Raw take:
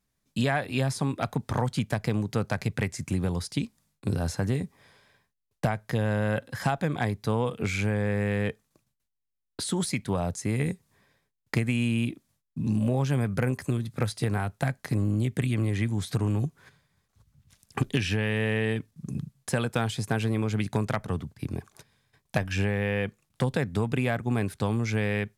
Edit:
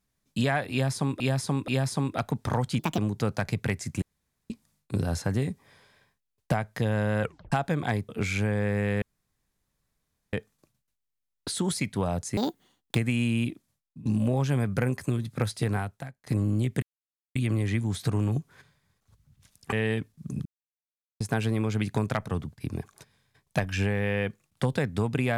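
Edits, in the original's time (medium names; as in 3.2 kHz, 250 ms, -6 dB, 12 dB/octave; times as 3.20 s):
0.72–1.20 s: loop, 3 plays
1.83–2.11 s: speed 148%
3.15–3.63 s: room tone
6.35 s: tape stop 0.30 s
7.22–7.52 s: delete
8.45 s: insert room tone 1.31 s
10.49–11.56 s: speed 183%
12.11–12.66 s: fade out, to -16.5 dB
14.38–14.87 s: fade out quadratic, to -22 dB
15.43 s: insert silence 0.53 s
17.80–18.51 s: delete
19.24–19.99 s: mute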